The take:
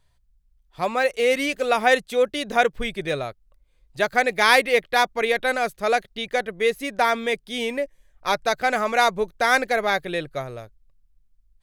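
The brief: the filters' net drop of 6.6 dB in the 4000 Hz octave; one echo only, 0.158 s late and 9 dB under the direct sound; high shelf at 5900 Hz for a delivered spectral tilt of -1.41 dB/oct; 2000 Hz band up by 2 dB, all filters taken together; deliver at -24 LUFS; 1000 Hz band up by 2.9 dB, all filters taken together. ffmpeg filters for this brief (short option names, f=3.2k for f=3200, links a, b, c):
-af "equalizer=f=1k:t=o:g=4,equalizer=f=2k:t=o:g=3.5,equalizer=f=4k:t=o:g=-7,highshelf=f=5.9k:g=-8.5,aecho=1:1:158:0.355,volume=-4dB"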